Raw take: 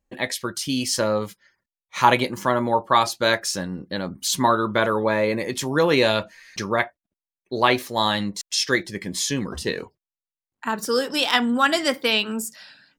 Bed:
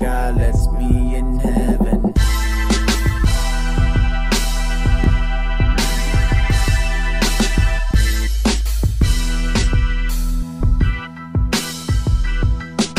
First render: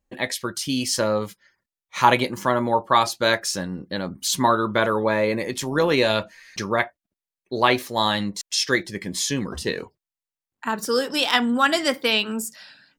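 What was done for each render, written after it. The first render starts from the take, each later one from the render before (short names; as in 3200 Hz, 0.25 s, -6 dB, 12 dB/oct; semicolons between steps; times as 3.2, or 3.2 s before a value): 5.48–6.1 AM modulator 110 Hz, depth 15%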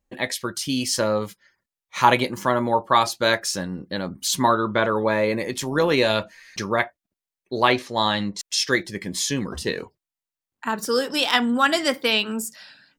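4.54–4.96 air absorption 71 m; 7.72–8.39 LPF 6600 Hz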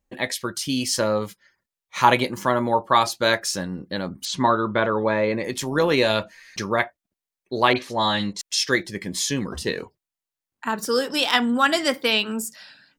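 4.25–5.44 air absorption 110 m; 7.73–8.33 dispersion highs, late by 41 ms, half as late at 2500 Hz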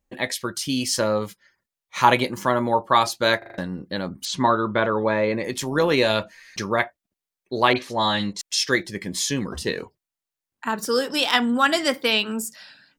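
3.38 stutter in place 0.04 s, 5 plays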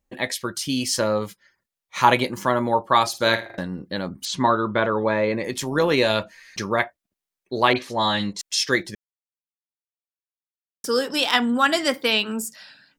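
3.08–3.55 flutter echo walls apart 9 m, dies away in 0.29 s; 8.95–10.84 mute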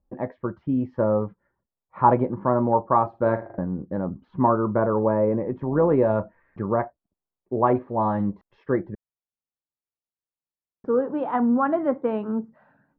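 LPF 1100 Hz 24 dB/oct; low shelf 200 Hz +5 dB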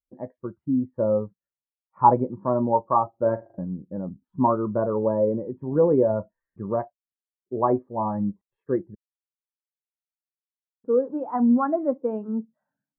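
spectral expander 1.5:1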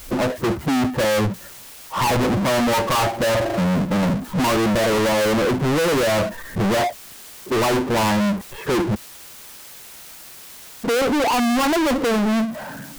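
power-law curve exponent 0.35; hard clip -18 dBFS, distortion -9 dB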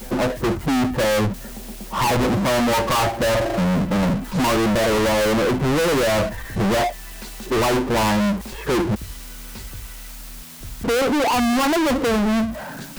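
add bed -20.5 dB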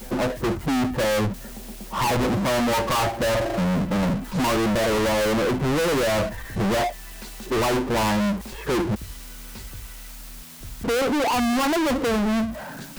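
gain -3 dB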